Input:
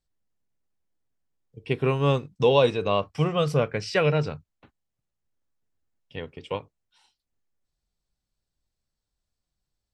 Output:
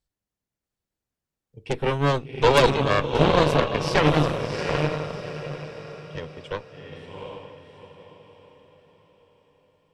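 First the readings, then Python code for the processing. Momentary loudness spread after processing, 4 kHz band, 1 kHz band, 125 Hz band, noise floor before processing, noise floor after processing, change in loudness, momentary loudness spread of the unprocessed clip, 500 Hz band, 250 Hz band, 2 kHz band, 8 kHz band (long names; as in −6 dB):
21 LU, +5.0 dB, +6.5 dB, +2.0 dB, −84 dBFS, below −85 dBFS, +2.0 dB, 18 LU, +2.0 dB, +4.5 dB, +6.5 dB, +8.0 dB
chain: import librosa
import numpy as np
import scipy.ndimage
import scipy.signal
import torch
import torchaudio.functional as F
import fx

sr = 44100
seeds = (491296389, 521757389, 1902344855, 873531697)

y = fx.echo_diffused(x, sr, ms=750, feedback_pct=41, wet_db=-4)
y = fx.cheby_harmonics(y, sr, harmonics=(6, 8), levels_db=(-8, -22), full_scale_db=-5.5)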